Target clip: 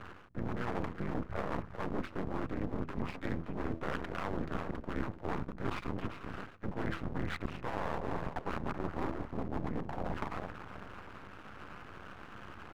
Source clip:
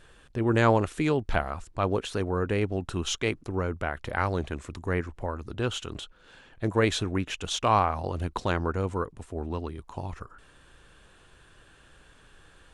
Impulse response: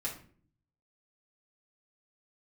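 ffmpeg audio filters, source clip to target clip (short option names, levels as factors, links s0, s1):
-filter_complex "[0:a]asoftclip=type=tanh:threshold=0.0596,aecho=1:1:383|766|1149:0.237|0.0783|0.0258,asplit=2[s0][s1];[s1]asetrate=37084,aresample=44100,atempo=1.18921,volume=0.891[s2];[s0][s2]amix=inputs=2:normalize=0,tremolo=f=200:d=0.667,highpass=f=150:t=q:w=0.5412,highpass=f=150:t=q:w=1.307,lowpass=f=2000:t=q:w=0.5176,lowpass=f=2000:t=q:w=0.7071,lowpass=f=2000:t=q:w=1.932,afreqshift=-110,bandreject=f=81.84:t=h:w=4,bandreject=f=163.68:t=h:w=4,bandreject=f=245.52:t=h:w=4,bandreject=f=327.36:t=h:w=4,aeval=exprs='max(val(0),0)':c=same,areverse,acompressor=threshold=0.00562:ratio=10,areverse,volume=5.01"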